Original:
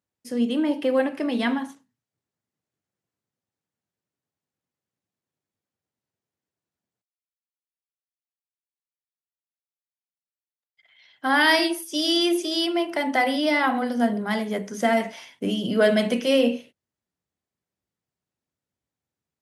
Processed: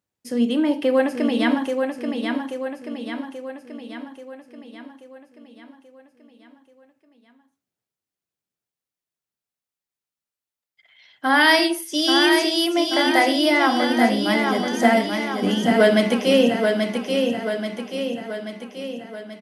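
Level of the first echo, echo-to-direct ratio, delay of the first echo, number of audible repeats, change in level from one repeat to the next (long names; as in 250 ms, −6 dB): −5.0 dB, −3.5 dB, 833 ms, 6, −5.0 dB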